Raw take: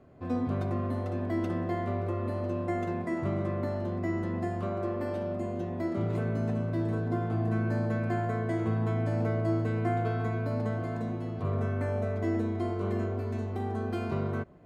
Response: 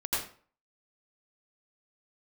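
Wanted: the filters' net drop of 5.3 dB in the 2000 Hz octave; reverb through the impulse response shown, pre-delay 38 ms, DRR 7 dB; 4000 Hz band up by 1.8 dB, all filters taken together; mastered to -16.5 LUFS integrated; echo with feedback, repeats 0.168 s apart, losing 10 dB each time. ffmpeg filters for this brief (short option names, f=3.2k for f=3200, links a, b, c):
-filter_complex "[0:a]equalizer=f=2k:t=o:g=-8,equalizer=f=4k:t=o:g=5,aecho=1:1:168|336|504|672:0.316|0.101|0.0324|0.0104,asplit=2[a][b];[1:a]atrim=start_sample=2205,adelay=38[c];[b][c]afir=irnorm=-1:irlink=0,volume=-14.5dB[d];[a][d]amix=inputs=2:normalize=0,volume=15.5dB"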